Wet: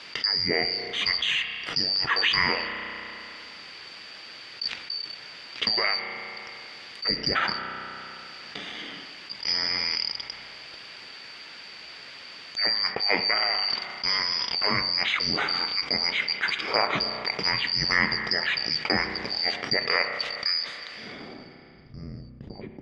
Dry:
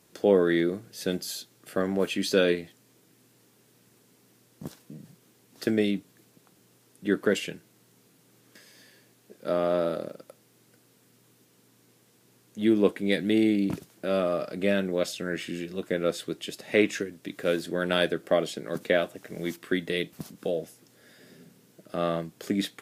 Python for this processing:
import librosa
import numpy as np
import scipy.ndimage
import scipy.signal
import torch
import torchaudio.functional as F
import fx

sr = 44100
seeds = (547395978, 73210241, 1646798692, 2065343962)

y = fx.band_shuffle(x, sr, order='2341')
y = fx.env_lowpass_down(y, sr, base_hz=2900.0, full_db=-20.0)
y = fx.weighting(y, sr, curve='D')
y = fx.leveller(y, sr, passes=1)
y = fx.filter_sweep_lowpass(y, sr, from_hz=2100.0, to_hz=150.0, start_s=21.0, end_s=21.81, q=0.84)
y = fx.rev_spring(y, sr, rt60_s=1.8, pass_ms=(32,), chirp_ms=60, drr_db=13.5)
y = fx.env_flatten(y, sr, amount_pct=50)